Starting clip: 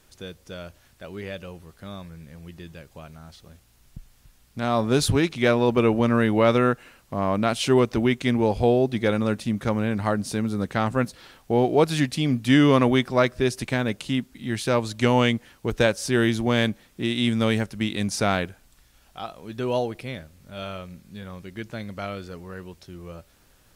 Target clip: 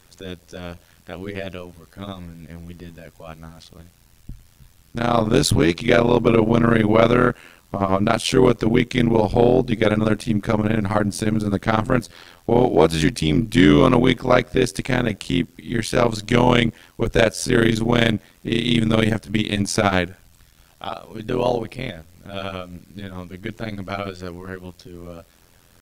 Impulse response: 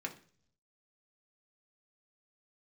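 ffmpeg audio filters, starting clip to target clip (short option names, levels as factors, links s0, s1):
-af "tremolo=f=86:d=0.974,acontrast=71,atempo=0.92,volume=1.26"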